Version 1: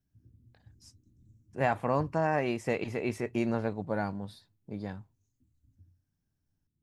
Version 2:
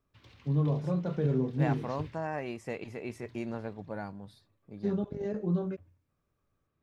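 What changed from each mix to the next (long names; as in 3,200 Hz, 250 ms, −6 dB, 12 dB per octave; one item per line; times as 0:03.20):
first voice: remove inverse Chebyshev band-stop filter 110–1,800 Hz, stop band 80 dB
second voice −7.0 dB
background: remove inverse Chebyshev low-pass filter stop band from 970 Hz, stop band 60 dB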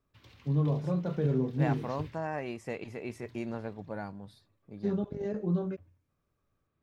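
background: add high-shelf EQ 12,000 Hz +12 dB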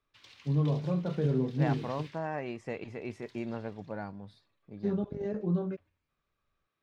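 background: add spectral tilt +4.5 dB per octave
master: add high-frequency loss of the air 73 metres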